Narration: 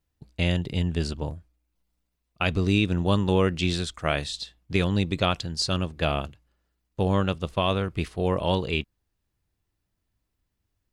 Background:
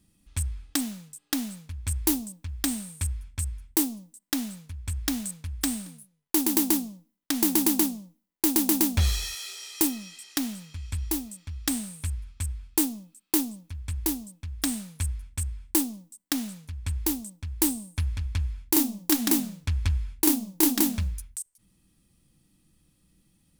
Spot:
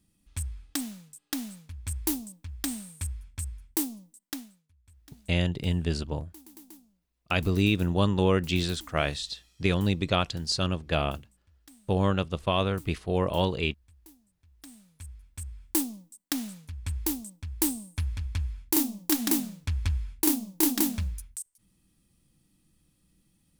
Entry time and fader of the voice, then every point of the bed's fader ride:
4.90 s, -1.5 dB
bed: 4.28 s -4.5 dB
4.63 s -27 dB
14.33 s -27 dB
15.78 s -2.5 dB

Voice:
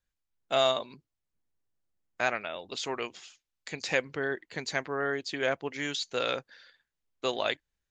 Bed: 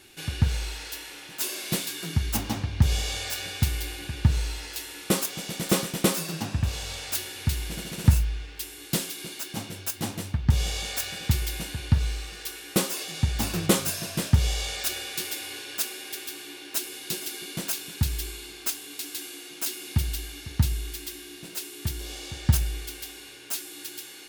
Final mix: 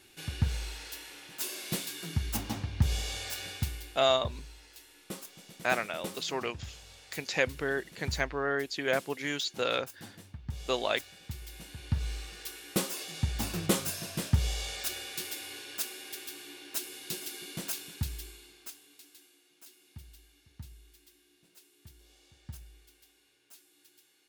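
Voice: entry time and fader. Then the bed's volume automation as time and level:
3.45 s, 0.0 dB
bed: 3.51 s -6 dB
4.08 s -17.5 dB
11.34 s -17.5 dB
12.15 s -6 dB
17.78 s -6 dB
19.40 s -24 dB

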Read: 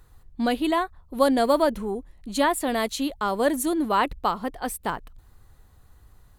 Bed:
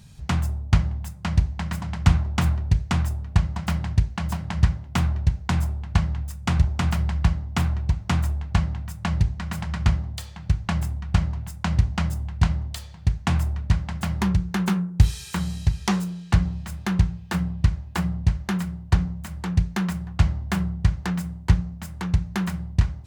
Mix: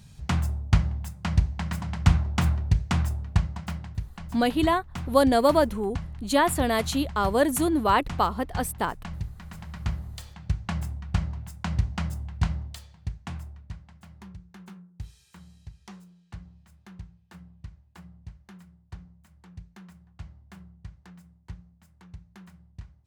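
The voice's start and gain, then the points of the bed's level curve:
3.95 s, +0.5 dB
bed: 3.29 s -2 dB
3.97 s -12.5 dB
9.51 s -12.5 dB
10.29 s -5.5 dB
12.57 s -5.5 dB
14.04 s -23 dB

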